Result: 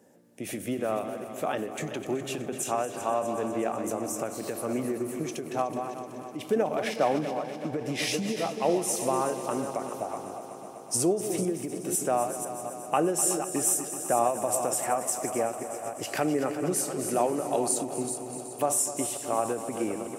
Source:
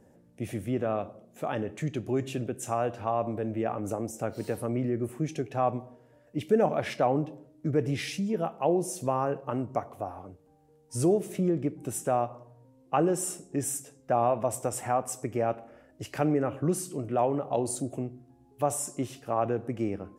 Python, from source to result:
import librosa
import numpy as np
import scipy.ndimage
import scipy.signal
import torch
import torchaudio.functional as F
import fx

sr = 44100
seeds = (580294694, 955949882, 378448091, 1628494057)

y = fx.reverse_delay(x, sr, ms=249, wet_db=-9.5)
y = fx.recorder_agc(y, sr, target_db=-19.5, rise_db_per_s=7.6, max_gain_db=30)
y = scipy.signal.sosfilt(scipy.signal.butter(2, 210.0, 'highpass', fs=sr, output='sos'), y)
y = fx.high_shelf(y, sr, hz=3100.0, db=7.5)
y = fx.echo_heads(y, sr, ms=125, heads='second and third', feedback_pct=69, wet_db=-13.5)
y = fx.end_taper(y, sr, db_per_s=120.0)